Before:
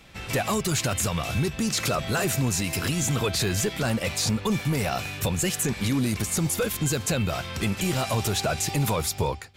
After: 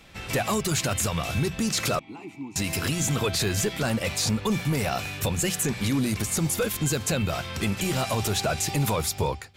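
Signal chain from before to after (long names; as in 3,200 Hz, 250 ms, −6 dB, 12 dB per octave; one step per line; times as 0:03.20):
mains-hum notches 60/120/180 Hz
0:01.99–0:02.56: formant filter u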